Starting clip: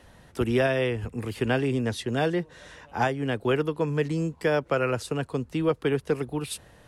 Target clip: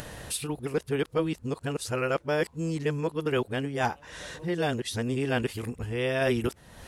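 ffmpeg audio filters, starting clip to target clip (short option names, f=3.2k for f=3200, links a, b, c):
-af "areverse,highshelf=f=4.2k:g=6.5,acompressor=mode=upward:threshold=-26dB:ratio=2.5,volume=-3dB"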